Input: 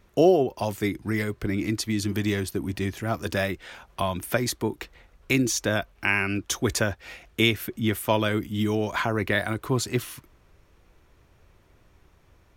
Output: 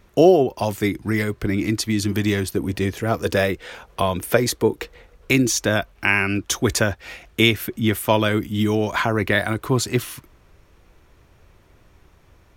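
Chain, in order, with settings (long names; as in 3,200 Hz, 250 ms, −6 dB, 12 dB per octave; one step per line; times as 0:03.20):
0:02.57–0:05.31: parametric band 470 Hz +11 dB 0.27 octaves
level +5 dB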